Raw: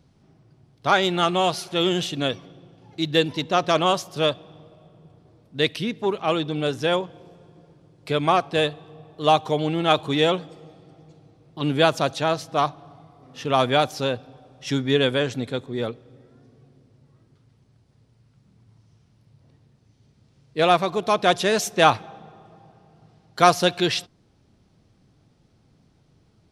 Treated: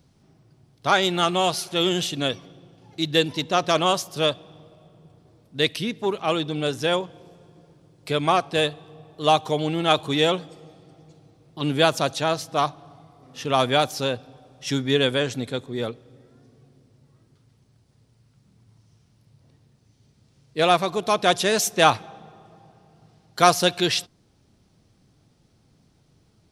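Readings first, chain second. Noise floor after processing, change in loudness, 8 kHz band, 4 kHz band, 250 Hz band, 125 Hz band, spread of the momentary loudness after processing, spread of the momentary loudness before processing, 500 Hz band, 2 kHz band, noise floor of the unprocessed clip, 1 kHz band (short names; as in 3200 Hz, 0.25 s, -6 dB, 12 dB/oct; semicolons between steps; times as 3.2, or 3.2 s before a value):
-62 dBFS, -0.5 dB, +4.5 dB, +1.5 dB, -1.0 dB, -1.0 dB, 11 LU, 11 LU, -1.0 dB, 0.0 dB, -61 dBFS, -1.0 dB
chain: high shelf 5400 Hz +8.5 dB; gain -1 dB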